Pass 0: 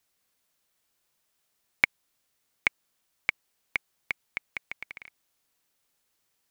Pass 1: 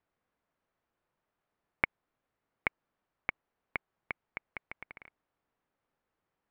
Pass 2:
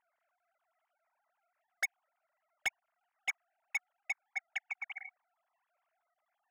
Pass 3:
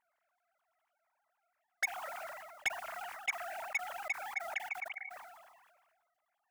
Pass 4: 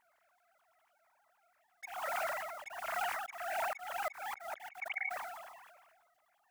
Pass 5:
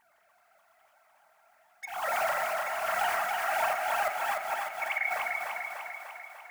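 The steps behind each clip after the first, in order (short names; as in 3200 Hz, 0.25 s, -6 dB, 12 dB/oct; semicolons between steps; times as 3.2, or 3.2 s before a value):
LPF 1400 Hz 12 dB/oct; gain +1 dB
sine-wave speech; soft clip -34 dBFS, distortion -6 dB; gain +6.5 dB
sustainer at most 35 dB/s
auto swell 0.355 s; gain +8.5 dB
thinning echo 0.297 s, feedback 62%, high-pass 200 Hz, level -3.5 dB; on a send at -5.5 dB: reverb RT60 0.85 s, pre-delay 3 ms; on the sum: gain +6 dB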